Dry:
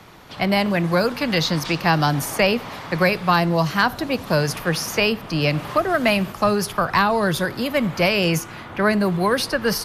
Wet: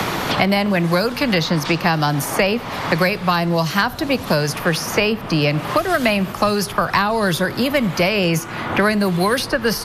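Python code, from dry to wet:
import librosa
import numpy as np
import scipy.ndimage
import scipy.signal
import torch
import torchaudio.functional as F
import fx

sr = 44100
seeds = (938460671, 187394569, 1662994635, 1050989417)

y = fx.band_squash(x, sr, depth_pct=100)
y = y * 10.0 ** (1.0 / 20.0)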